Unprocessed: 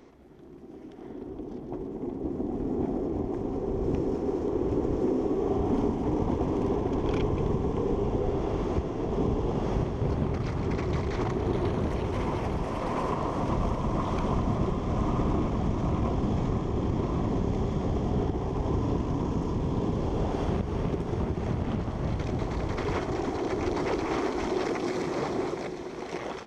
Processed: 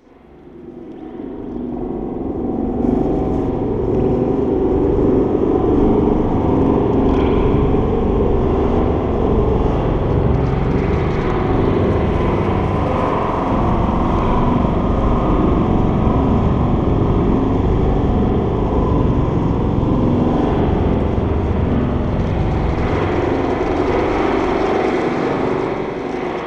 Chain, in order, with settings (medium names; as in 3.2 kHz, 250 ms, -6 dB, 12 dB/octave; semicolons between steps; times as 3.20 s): 2.82–3.49 s: treble shelf 3.2 kHz +10.5 dB; spring tank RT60 2.4 s, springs 41/45 ms, chirp 65 ms, DRR -10 dB; trim +2 dB